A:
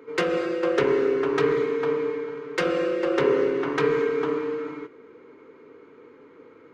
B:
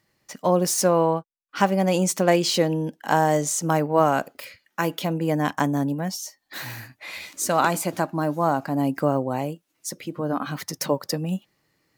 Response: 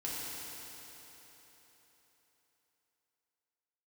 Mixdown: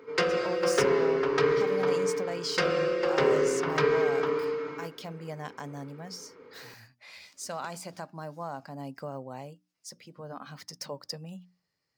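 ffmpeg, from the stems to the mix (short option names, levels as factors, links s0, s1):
-filter_complex "[0:a]volume=0.841,asplit=2[s0][s1];[s1]volume=0.0794[s2];[1:a]bandreject=f=60:t=h:w=6,bandreject=f=120:t=h:w=6,bandreject=f=180:t=h:w=6,bandreject=f=240:t=h:w=6,bandreject=f=300:t=h:w=6,alimiter=limit=0.282:level=0:latency=1:release=64,volume=0.211[s3];[2:a]atrim=start_sample=2205[s4];[s2][s4]afir=irnorm=-1:irlink=0[s5];[s0][s3][s5]amix=inputs=3:normalize=0,equalizer=f=315:t=o:w=0.33:g=-10,equalizer=f=5000:t=o:w=0.33:g=9,equalizer=f=12500:t=o:w=0.33:g=-10"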